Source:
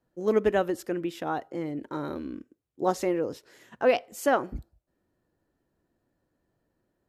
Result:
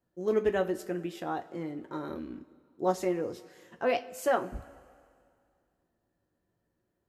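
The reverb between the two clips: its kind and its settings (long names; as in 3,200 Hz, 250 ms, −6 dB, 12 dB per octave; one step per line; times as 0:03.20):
coupled-rooms reverb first 0.21 s, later 2.2 s, from −21 dB, DRR 5.5 dB
level −5 dB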